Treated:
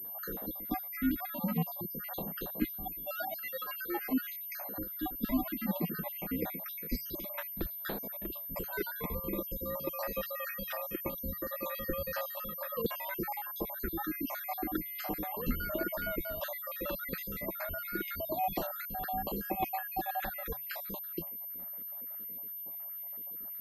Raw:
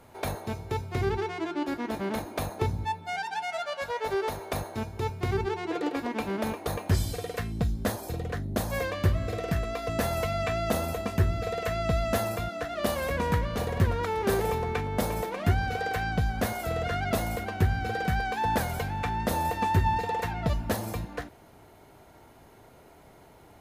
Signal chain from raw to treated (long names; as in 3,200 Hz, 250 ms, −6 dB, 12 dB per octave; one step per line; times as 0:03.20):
time-frequency cells dropped at random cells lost 61%
frequency shifter −130 Hz
low shelf with overshoot 140 Hz −8 dB, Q 3
switching amplifier with a slow clock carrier 13,000 Hz
level −3 dB